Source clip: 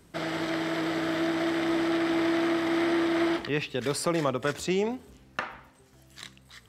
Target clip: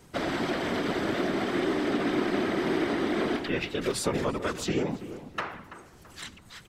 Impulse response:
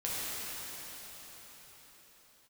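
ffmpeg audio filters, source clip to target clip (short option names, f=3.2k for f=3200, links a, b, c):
-filter_complex "[0:a]bandreject=f=50:t=h:w=6,bandreject=f=100:t=h:w=6,bandreject=f=150:t=h:w=6,acompressor=threshold=-32dB:ratio=2,afftfilt=real='hypot(re,im)*cos(2*PI*random(0))':imag='hypot(re,im)*sin(2*PI*random(1))':win_size=512:overlap=0.75,asplit=2[a][b];[b]adelay=332,lowpass=f=1.9k:p=1,volume=-13dB,asplit=2[c][d];[d]adelay=332,lowpass=f=1.9k:p=1,volume=0.44,asplit=2[e][f];[f]adelay=332,lowpass=f=1.9k:p=1,volume=0.44,asplit=2[g][h];[h]adelay=332,lowpass=f=1.9k:p=1,volume=0.44[i];[a][c][e][g][i]amix=inputs=5:normalize=0,asplit=2[j][k];[k]asetrate=35002,aresample=44100,atempo=1.25992,volume=-5dB[l];[j][l]amix=inputs=2:normalize=0,volume=8.5dB"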